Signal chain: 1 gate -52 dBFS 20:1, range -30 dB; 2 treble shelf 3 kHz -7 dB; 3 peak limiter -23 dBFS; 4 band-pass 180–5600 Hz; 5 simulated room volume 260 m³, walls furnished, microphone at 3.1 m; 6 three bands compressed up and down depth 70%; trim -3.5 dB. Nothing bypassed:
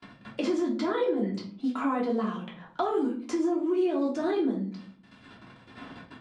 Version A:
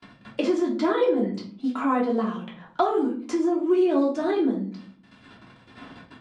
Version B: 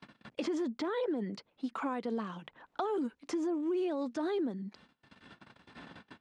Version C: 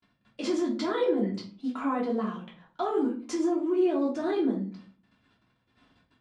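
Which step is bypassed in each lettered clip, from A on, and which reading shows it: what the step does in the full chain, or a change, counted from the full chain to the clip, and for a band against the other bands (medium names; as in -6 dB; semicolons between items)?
3, mean gain reduction 2.0 dB; 5, 4 kHz band +2.0 dB; 6, crest factor change +1.5 dB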